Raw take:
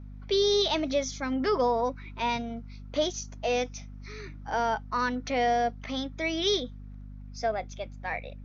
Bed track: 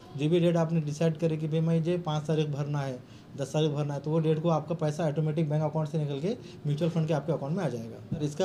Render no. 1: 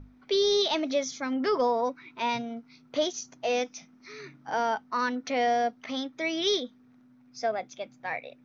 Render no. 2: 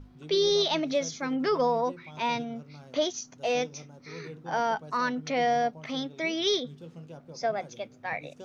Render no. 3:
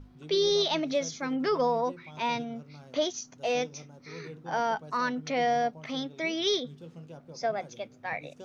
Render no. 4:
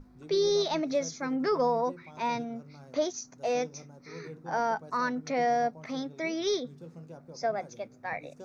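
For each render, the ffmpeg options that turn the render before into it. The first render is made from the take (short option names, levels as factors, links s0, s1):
-af "bandreject=f=50:t=h:w=6,bandreject=f=100:t=h:w=6,bandreject=f=150:t=h:w=6,bandreject=f=200:t=h:w=6"
-filter_complex "[1:a]volume=0.133[s0];[0:a][s0]amix=inputs=2:normalize=0"
-af "volume=0.891"
-af "equalizer=f=3100:w=2.8:g=-13,bandreject=f=50:t=h:w=6,bandreject=f=100:t=h:w=6,bandreject=f=150:t=h:w=6"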